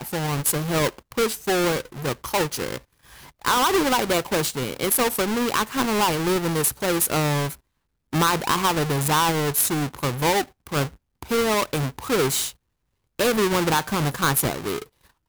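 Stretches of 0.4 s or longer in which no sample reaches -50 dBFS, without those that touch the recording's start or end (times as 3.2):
7.56–8.13
12.53–13.19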